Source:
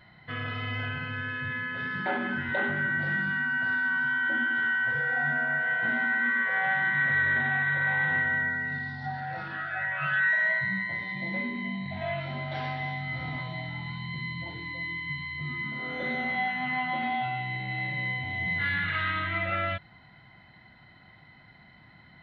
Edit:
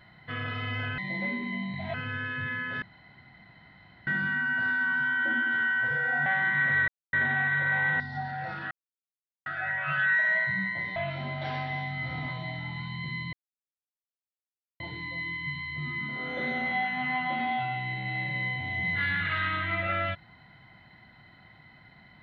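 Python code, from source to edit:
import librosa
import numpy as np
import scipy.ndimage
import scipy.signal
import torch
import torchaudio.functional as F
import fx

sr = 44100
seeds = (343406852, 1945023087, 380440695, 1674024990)

y = fx.edit(x, sr, fx.room_tone_fill(start_s=1.86, length_s=1.25),
    fx.cut(start_s=5.3, length_s=1.36),
    fx.insert_silence(at_s=7.28, length_s=0.25),
    fx.cut(start_s=8.15, length_s=0.74),
    fx.insert_silence(at_s=9.6, length_s=0.75),
    fx.move(start_s=11.1, length_s=0.96, to_s=0.98),
    fx.insert_silence(at_s=14.43, length_s=1.47), tone=tone)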